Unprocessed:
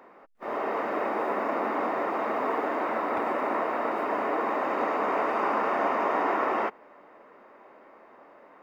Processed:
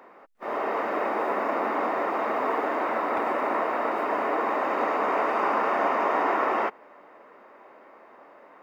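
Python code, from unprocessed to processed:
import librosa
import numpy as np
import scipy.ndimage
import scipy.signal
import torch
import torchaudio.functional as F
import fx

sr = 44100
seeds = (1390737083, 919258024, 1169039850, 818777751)

y = fx.low_shelf(x, sr, hz=250.0, db=-5.5)
y = y * librosa.db_to_amplitude(2.5)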